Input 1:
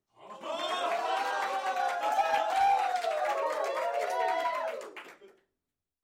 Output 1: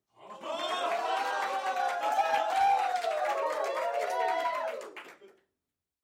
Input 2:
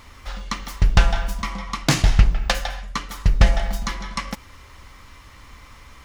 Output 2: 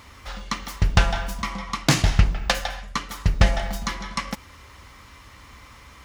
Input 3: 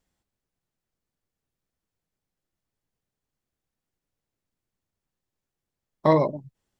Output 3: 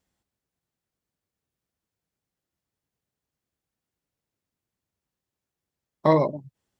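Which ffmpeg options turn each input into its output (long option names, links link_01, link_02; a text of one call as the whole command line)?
ffmpeg -i in.wav -af "highpass=51" out.wav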